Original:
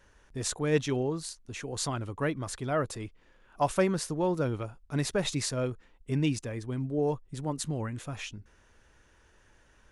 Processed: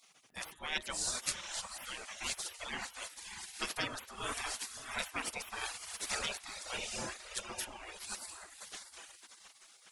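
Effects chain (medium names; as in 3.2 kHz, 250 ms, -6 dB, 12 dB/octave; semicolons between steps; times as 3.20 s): de-hum 155.6 Hz, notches 24; in parallel at -11 dB: saturation -23 dBFS, distortion -15 dB; 6.21–7.65 s: on the sum: high-pass 55 Hz 12 dB/octave; on a send: echo that smears into a reverb 616 ms, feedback 41%, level -6.5 dB; on the sum: reverb removal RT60 0.94 s; spectral gate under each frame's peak -25 dB weak; trim +8 dB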